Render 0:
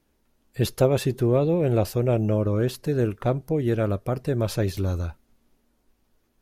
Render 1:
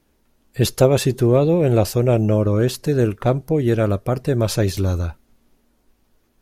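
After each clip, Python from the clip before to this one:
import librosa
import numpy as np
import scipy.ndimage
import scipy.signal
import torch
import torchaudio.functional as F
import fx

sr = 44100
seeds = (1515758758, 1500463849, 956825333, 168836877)

y = fx.dynamic_eq(x, sr, hz=6900.0, q=0.89, threshold_db=-49.0, ratio=4.0, max_db=5)
y = y * librosa.db_to_amplitude(5.5)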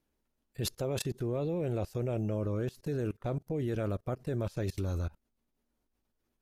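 y = fx.level_steps(x, sr, step_db=24)
y = y * librosa.db_to_amplitude(-8.0)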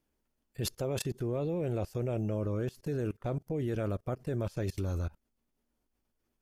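y = fx.notch(x, sr, hz=3900.0, q=14.0)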